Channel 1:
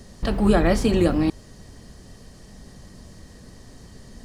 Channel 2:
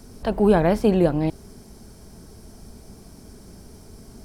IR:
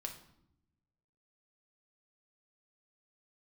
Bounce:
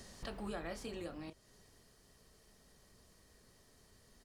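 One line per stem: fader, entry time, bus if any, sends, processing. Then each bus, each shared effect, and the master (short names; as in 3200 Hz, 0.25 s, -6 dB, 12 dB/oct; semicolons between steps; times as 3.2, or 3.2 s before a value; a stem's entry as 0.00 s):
-2.5 dB, 0.00 s, no send, auto duck -13 dB, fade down 1.85 s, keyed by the second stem
-15.5 dB, 29 ms, no send, fixed phaser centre 1200 Hz, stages 8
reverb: off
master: low shelf 490 Hz -10.5 dB; compressor 2:1, threshold -50 dBFS, peak gain reduction 13.5 dB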